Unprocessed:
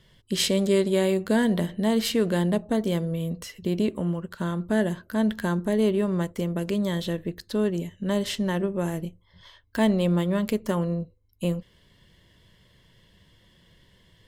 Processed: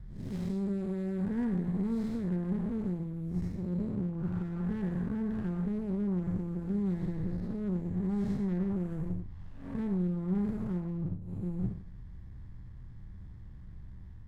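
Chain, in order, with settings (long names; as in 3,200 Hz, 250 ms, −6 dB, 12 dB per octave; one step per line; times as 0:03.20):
spectrum smeared in time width 230 ms
RIAA equalisation playback
reversed playback
downward compressor 6 to 1, threshold −28 dBFS, peak gain reduction 14.5 dB
reversed playback
phaser with its sweep stopped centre 1,200 Hz, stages 4
on a send at −10.5 dB: convolution reverb RT60 0.45 s, pre-delay 3 ms
on the sum: windowed peak hold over 33 samples
level +1.5 dB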